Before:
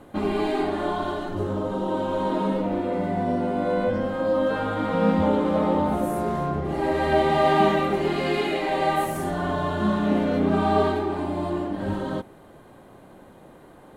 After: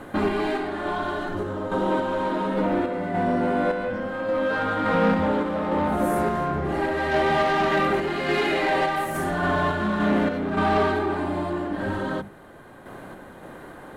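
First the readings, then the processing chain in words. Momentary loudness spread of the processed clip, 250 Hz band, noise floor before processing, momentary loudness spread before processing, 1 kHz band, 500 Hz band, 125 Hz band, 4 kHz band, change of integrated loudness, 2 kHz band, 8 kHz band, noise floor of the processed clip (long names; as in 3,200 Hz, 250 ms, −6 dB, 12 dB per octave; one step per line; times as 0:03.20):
8 LU, −1.0 dB, −49 dBFS, 7 LU, +0.5 dB, −0.5 dB, −1.5 dB, +1.0 dB, 0.0 dB, +5.5 dB, +0.5 dB, −44 dBFS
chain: parametric band 1,600 Hz +7.5 dB 0.79 octaves
mains-hum notches 50/100/150/200 Hz
in parallel at −1 dB: downward compressor, threshold −32 dBFS, peak gain reduction 17 dB
on the sum: soft clipping −16 dBFS, distortion −15 dB
sample-and-hold tremolo
level +2 dB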